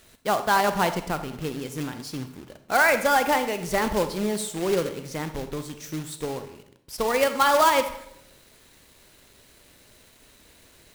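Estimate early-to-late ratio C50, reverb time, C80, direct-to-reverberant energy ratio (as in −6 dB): 10.5 dB, 0.75 s, 13.5 dB, 9.0 dB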